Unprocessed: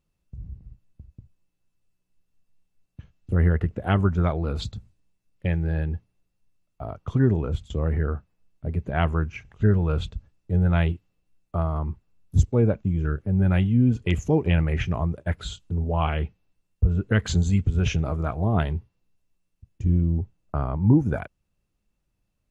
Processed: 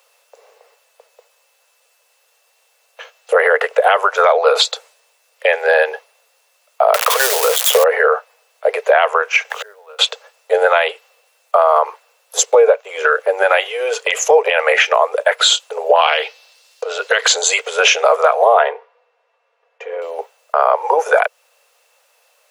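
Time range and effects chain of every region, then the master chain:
6.94–7.84 switching spikes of -24 dBFS + companded quantiser 6-bit + three-band squash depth 100%
9.5–9.99 G.711 law mismatch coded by mu + flipped gate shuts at -29 dBFS, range -35 dB
15.95–17.26 compressor, threshold -23 dBFS + bell 4500 Hz +13.5 dB 1.4 oct
18.59–20.02 LPF 1700 Hz + comb 4.2 ms, depth 45%
whole clip: steep high-pass 460 Hz 96 dB/oct; compressor 2.5:1, threshold -37 dBFS; maximiser +29.5 dB; gain -1 dB

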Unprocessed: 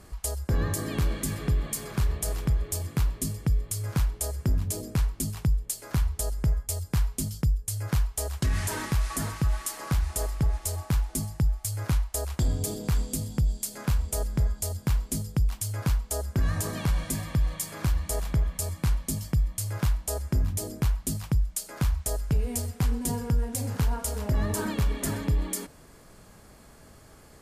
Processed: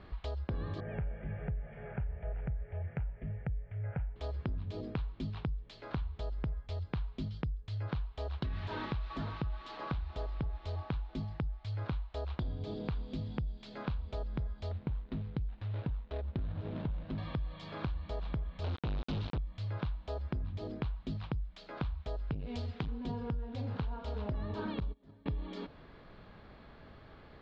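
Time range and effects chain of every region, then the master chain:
0.8–4.16 LPF 2200 Hz 24 dB/oct + fixed phaser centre 1100 Hz, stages 6
14.71–17.18 median filter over 41 samples + mismatched tape noise reduction encoder only
18.64–19.38 companded quantiser 2-bit + Doppler distortion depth 0.55 ms
22.34–22.88 high shelf 2400 Hz +9 dB + core saturation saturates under 380 Hz
24.8–25.26 bell 2100 Hz -11.5 dB 2 oct + gate -26 dBFS, range -25 dB
whole clip: elliptic low-pass 3900 Hz, stop band 70 dB; dynamic EQ 1900 Hz, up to -7 dB, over -56 dBFS, Q 2.2; compressor, threshold -33 dBFS; gain -1 dB

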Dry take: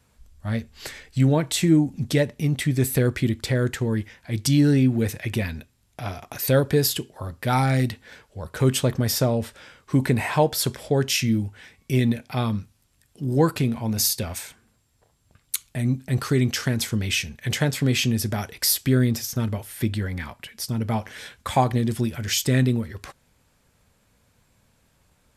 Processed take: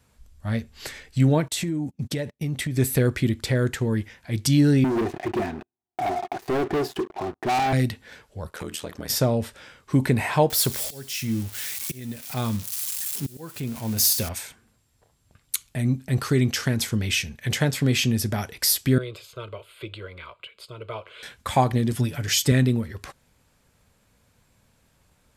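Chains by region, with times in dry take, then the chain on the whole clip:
1.48–2.77 HPF 42 Hz + gate -33 dBFS, range -30 dB + compressor 10:1, threshold -23 dBFS
4.84–7.73 double band-pass 520 Hz, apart 1 oct + sample leveller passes 5
8.5–9.1 HPF 430 Hz 6 dB/oct + compressor 10:1, threshold -25 dBFS + ring modulator 40 Hz
10.5–14.29 switching spikes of -22 dBFS + auto swell 0.688 s + thin delay 73 ms, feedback 75%, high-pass 2700 Hz, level -20 dB
18.98–21.23 three-band isolator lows -13 dB, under 310 Hz, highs -24 dB, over 6400 Hz + fixed phaser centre 1200 Hz, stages 8
21.92–22.52 HPF 44 Hz + comb 7 ms, depth 63%
whole clip: dry

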